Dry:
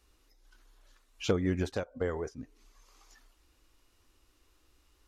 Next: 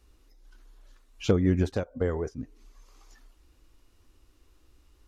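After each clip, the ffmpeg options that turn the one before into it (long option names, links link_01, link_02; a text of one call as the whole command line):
ffmpeg -i in.wav -af "lowshelf=frequency=430:gain=8.5" out.wav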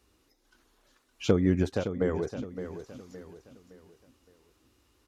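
ffmpeg -i in.wav -filter_complex "[0:a]highpass=100,asplit=2[link_01][link_02];[link_02]aecho=0:1:565|1130|1695|2260:0.299|0.116|0.0454|0.0177[link_03];[link_01][link_03]amix=inputs=2:normalize=0" out.wav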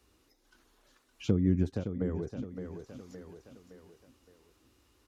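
ffmpeg -i in.wav -filter_complex "[0:a]acrossover=split=310[link_01][link_02];[link_02]acompressor=threshold=-51dB:ratio=2[link_03];[link_01][link_03]amix=inputs=2:normalize=0" out.wav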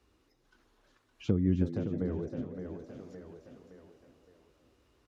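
ffmpeg -i in.wav -filter_complex "[0:a]lowpass=frequency=3300:poles=1,asplit=2[link_01][link_02];[link_02]asplit=4[link_03][link_04][link_05][link_06];[link_03]adelay=318,afreqshift=70,volume=-10.5dB[link_07];[link_04]adelay=636,afreqshift=140,volume=-19.1dB[link_08];[link_05]adelay=954,afreqshift=210,volume=-27.8dB[link_09];[link_06]adelay=1272,afreqshift=280,volume=-36.4dB[link_10];[link_07][link_08][link_09][link_10]amix=inputs=4:normalize=0[link_11];[link_01][link_11]amix=inputs=2:normalize=0,volume=-1dB" out.wav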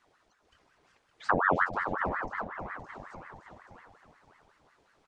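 ffmpeg -i in.wav -af "aresample=22050,aresample=44100,aeval=exprs='val(0)*sin(2*PI*970*n/s+970*0.65/5.5*sin(2*PI*5.5*n/s))':channel_layout=same,volume=4dB" out.wav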